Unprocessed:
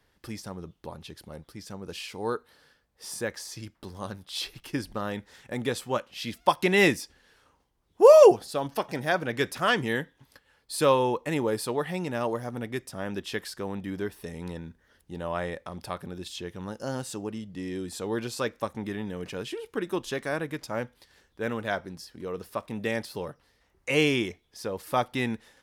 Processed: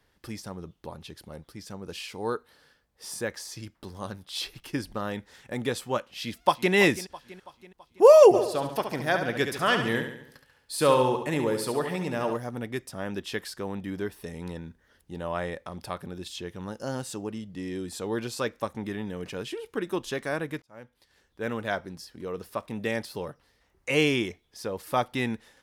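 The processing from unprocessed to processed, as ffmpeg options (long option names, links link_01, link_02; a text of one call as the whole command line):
ffmpeg -i in.wav -filter_complex "[0:a]asplit=2[link_01][link_02];[link_02]afade=type=in:start_time=6.13:duration=0.01,afade=type=out:start_time=6.73:duration=0.01,aecho=0:1:330|660|990|1320|1650:0.158489|0.0871691|0.047943|0.0263687|0.0145028[link_03];[link_01][link_03]amix=inputs=2:normalize=0,asplit=3[link_04][link_05][link_06];[link_04]afade=type=out:start_time=8.33:duration=0.02[link_07];[link_05]aecho=1:1:70|140|210|280|350|420:0.422|0.211|0.105|0.0527|0.0264|0.0132,afade=type=in:start_time=8.33:duration=0.02,afade=type=out:start_time=12.36:duration=0.02[link_08];[link_06]afade=type=in:start_time=12.36:duration=0.02[link_09];[link_07][link_08][link_09]amix=inputs=3:normalize=0,asplit=2[link_10][link_11];[link_10]atrim=end=20.62,asetpts=PTS-STARTPTS,afade=type=out:start_time=20.616:duration=0.004:curve=hsin[link_12];[link_11]atrim=start=20.62,asetpts=PTS-STARTPTS,afade=type=in:duration=0.93[link_13];[link_12][link_13]concat=n=2:v=0:a=1" out.wav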